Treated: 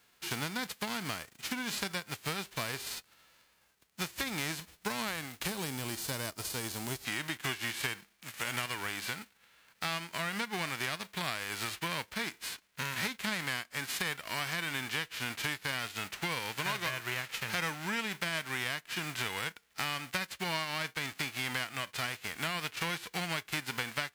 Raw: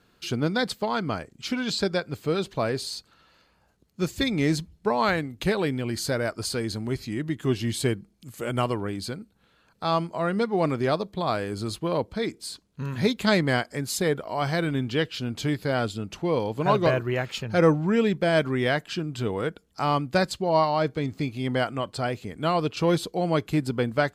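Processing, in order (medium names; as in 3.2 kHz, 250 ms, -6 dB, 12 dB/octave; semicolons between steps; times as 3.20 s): formants flattened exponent 0.3; peaking EQ 2 kHz +5.5 dB 1.9 oct, from 5.48 s -2 dB, from 7.05 s +11.5 dB; compression 5:1, threshold -26 dBFS, peak gain reduction 16.5 dB; trim -6.5 dB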